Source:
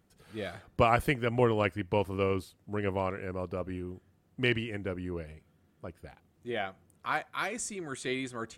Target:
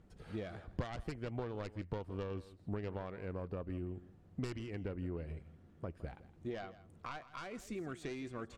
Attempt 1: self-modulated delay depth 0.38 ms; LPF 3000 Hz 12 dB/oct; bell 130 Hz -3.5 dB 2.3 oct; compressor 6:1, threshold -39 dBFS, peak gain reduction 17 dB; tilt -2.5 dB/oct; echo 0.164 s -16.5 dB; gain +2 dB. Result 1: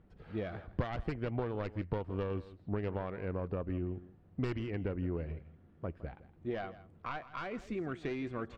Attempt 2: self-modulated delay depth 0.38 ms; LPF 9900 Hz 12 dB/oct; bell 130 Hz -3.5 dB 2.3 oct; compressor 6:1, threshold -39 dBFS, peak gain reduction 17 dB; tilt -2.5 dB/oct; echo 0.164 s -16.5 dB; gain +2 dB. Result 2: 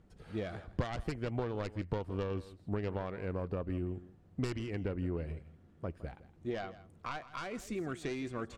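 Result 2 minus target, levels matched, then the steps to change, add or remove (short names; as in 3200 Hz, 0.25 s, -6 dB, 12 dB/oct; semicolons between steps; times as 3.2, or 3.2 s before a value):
compressor: peak gain reduction -5 dB
change: compressor 6:1, threshold -45 dBFS, peak gain reduction 22 dB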